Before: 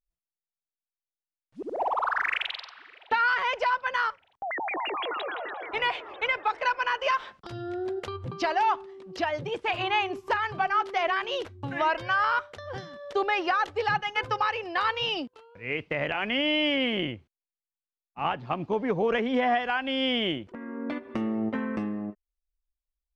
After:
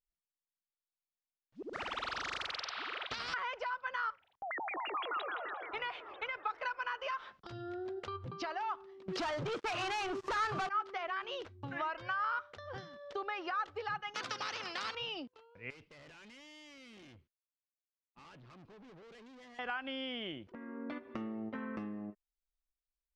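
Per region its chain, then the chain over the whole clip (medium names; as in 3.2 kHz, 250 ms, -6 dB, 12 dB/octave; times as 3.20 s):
1.73–3.34 s: high-pass 48 Hz + spectrum-flattening compressor 10:1
9.08–10.69 s: high-pass 100 Hz + waveshaping leveller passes 5
14.14–14.95 s: high-pass 190 Hz 24 dB/octave + spectrum-flattening compressor 4:1
15.70–19.59 s: compression, threshold -29 dBFS + peaking EQ 750 Hz -13.5 dB 0.3 oct + valve stage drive 46 dB, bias 0.5
whole clip: Chebyshev low-pass 5.5 kHz, order 2; compression, threshold -30 dBFS; dynamic bell 1.3 kHz, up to +8 dB, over -50 dBFS, Q 2.9; trim -7.5 dB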